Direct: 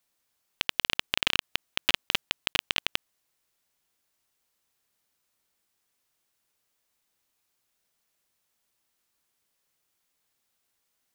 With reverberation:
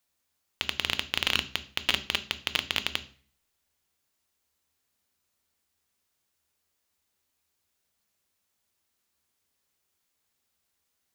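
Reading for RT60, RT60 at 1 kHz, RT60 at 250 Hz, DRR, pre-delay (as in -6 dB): 0.45 s, 0.45 s, 0.55 s, 10.5 dB, 3 ms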